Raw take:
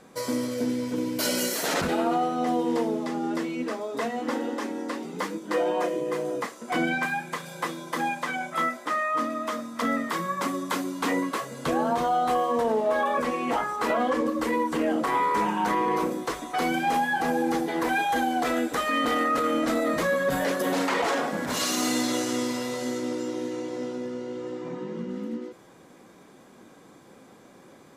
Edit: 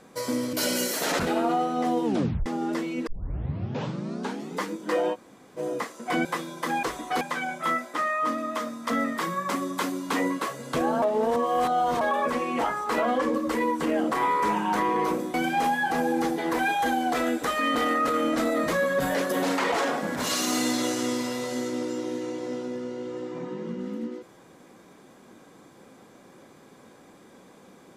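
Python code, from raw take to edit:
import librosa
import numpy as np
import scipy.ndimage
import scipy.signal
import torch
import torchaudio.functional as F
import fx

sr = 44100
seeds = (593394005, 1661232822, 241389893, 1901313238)

y = fx.edit(x, sr, fx.cut(start_s=0.53, length_s=0.62),
    fx.tape_stop(start_s=2.67, length_s=0.41),
    fx.tape_start(start_s=3.69, length_s=1.47),
    fx.room_tone_fill(start_s=5.76, length_s=0.44, crossfade_s=0.04),
    fx.cut(start_s=6.87, length_s=0.68),
    fx.reverse_span(start_s=11.94, length_s=0.99),
    fx.move(start_s=16.26, length_s=0.38, to_s=8.13), tone=tone)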